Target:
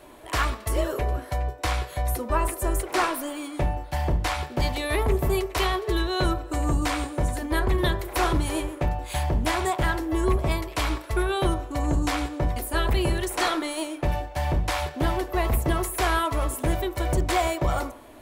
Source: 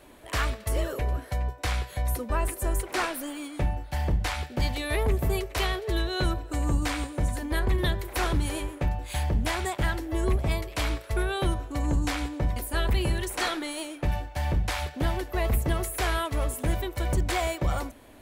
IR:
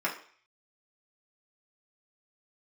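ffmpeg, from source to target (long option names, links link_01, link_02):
-filter_complex "[0:a]asplit=2[link_01][link_02];[link_02]highshelf=frequency=1600:width_type=q:width=1.5:gain=-12.5[link_03];[1:a]atrim=start_sample=2205,asetrate=43659,aresample=44100[link_04];[link_03][link_04]afir=irnorm=-1:irlink=0,volume=-12dB[link_05];[link_01][link_05]amix=inputs=2:normalize=0,volume=2dB"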